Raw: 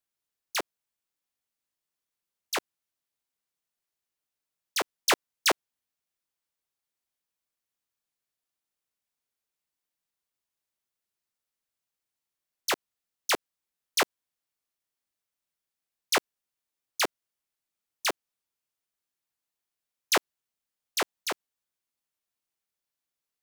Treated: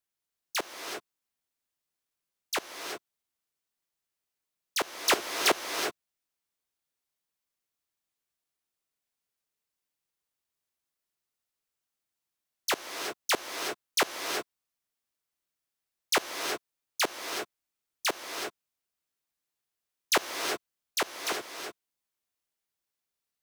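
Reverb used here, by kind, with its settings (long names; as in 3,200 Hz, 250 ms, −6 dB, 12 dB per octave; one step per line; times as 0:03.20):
reverb whose tail is shaped and stops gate 400 ms rising, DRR 4 dB
level −1 dB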